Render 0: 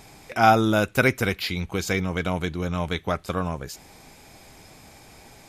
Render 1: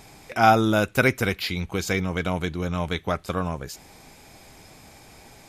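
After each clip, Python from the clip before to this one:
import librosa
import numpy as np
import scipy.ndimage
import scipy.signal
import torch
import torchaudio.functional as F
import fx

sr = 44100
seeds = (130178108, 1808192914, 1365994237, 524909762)

y = x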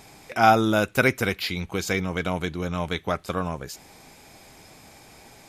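y = fx.low_shelf(x, sr, hz=97.0, db=-6.0)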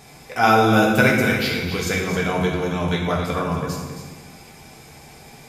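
y = x + 10.0 ** (-9.5 / 20.0) * np.pad(x, (int(268 * sr / 1000.0), 0))[:len(x)]
y = fx.rev_fdn(y, sr, rt60_s=1.3, lf_ratio=1.45, hf_ratio=0.8, size_ms=40.0, drr_db=-2.5)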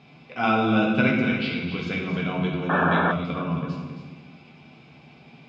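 y = fx.cabinet(x, sr, low_hz=120.0, low_slope=12, high_hz=3700.0, hz=(160.0, 250.0, 460.0, 840.0, 1800.0, 2700.0), db=(6, 6, -5, -5, -9, 6))
y = fx.spec_paint(y, sr, seeds[0], shape='noise', start_s=2.69, length_s=0.43, low_hz=210.0, high_hz=1800.0, level_db=-17.0)
y = y * librosa.db_to_amplitude(-5.0)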